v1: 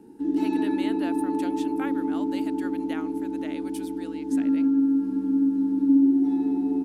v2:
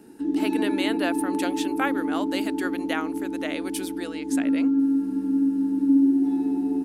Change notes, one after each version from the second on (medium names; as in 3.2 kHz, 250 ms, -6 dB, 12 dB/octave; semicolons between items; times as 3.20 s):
speech +10.5 dB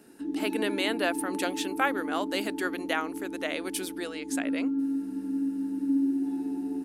background -7.5 dB